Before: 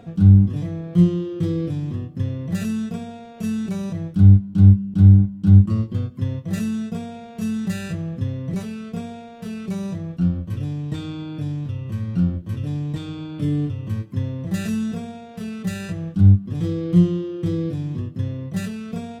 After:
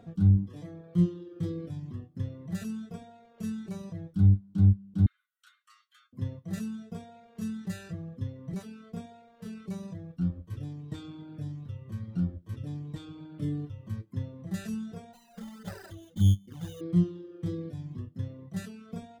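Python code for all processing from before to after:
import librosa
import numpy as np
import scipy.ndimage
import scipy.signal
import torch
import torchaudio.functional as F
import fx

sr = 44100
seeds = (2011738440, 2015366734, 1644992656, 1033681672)

y = fx.chain(x, sr, fx.steep_highpass(hz=1200.0, slope=96),
    fx.notch(hz=4900.0, q=6.4),
    fx.band_squash(depth_pct=40), at=(5.06, 6.13))
y = fx.chain(y, sr, fx.high_shelf(hz=3000.0, db=8.5),
    fx.sample_hold(seeds[0], rate_hz=3300.0, jitter_pct=0),
    fx.env_flanger(rest_ms=6.9, full_db=-13.0), at=(15.13, 16.81))
y = fx.dereverb_blind(y, sr, rt60_s=0.96)
y = fx.peak_eq(y, sr, hz=2600.0, db=-5.0, octaves=0.4)
y = y * 10.0 ** (-9.0 / 20.0)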